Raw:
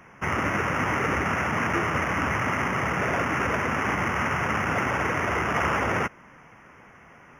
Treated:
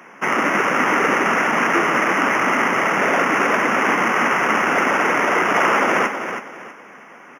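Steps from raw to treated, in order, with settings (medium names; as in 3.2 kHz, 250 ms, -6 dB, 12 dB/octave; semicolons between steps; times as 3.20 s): high-pass 220 Hz 24 dB/octave; feedback delay 323 ms, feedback 29%, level -8.5 dB; trim +8 dB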